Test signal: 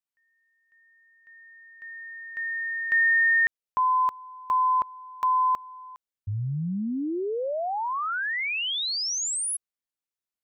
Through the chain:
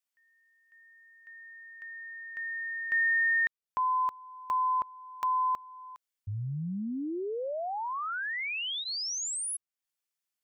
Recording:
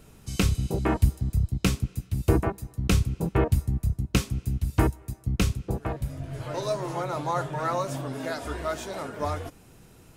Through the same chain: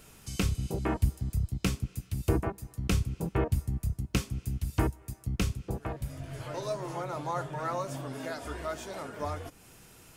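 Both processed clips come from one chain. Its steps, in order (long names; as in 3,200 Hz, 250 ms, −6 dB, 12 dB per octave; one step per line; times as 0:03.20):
notch filter 3,900 Hz, Q 20
one half of a high-frequency compander encoder only
level −5.5 dB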